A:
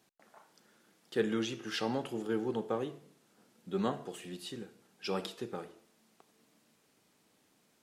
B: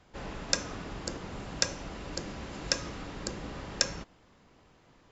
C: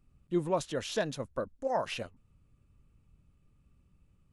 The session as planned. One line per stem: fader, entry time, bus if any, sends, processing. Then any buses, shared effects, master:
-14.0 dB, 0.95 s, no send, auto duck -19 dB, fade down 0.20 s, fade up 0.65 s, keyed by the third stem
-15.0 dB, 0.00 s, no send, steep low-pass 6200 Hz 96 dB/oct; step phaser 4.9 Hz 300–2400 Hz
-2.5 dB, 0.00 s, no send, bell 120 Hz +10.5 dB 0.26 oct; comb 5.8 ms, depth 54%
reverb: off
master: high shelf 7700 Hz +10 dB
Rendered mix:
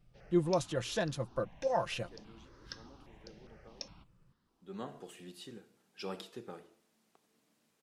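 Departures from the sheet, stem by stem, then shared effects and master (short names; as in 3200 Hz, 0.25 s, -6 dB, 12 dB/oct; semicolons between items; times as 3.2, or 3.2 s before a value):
stem A -14.0 dB -> -6.0 dB; master: missing high shelf 7700 Hz +10 dB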